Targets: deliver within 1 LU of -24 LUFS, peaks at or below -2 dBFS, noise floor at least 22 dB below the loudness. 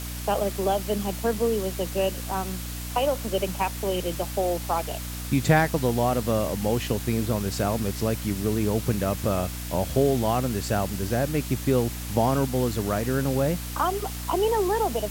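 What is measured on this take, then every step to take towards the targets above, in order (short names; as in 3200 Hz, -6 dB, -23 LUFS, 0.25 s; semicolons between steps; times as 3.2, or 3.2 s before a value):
hum 60 Hz; harmonics up to 300 Hz; hum level -33 dBFS; noise floor -34 dBFS; noise floor target -48 dBFS; loudness -26.0 LUFS; peak -7.5 dBFS; loudness target -24.0 LUFS
-> notches 60/120/180/240/300 Hz; noise print and reduce 14 dB; gain +2 dB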